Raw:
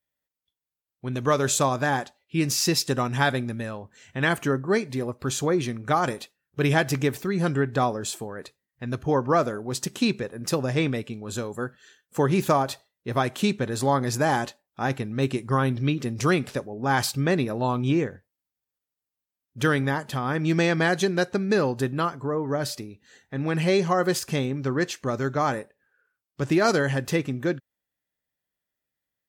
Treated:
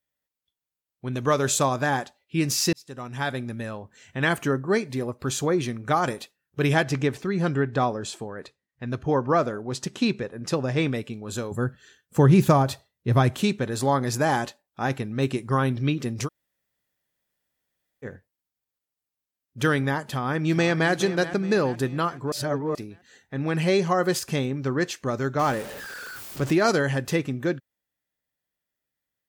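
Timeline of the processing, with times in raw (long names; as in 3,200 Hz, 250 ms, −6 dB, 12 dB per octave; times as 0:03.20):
0:02.73–0:03.73: fade in
0:06.83–0:10.79: high-frequency loss of the air 56 metres
0:11.51–0:13.42: parametric band 87 Hz +13 dB 2.4 octaves
0:16.26–0:18.05: fill with room tone, crossfade 0.06 s
0:20.10–0:20.91: delay throw 420 ms, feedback 50%, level −13.5 dB
0:22.32–0:22.75: reverse
0:25.39–0:26.52: converter with a step at zero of −32 dBFS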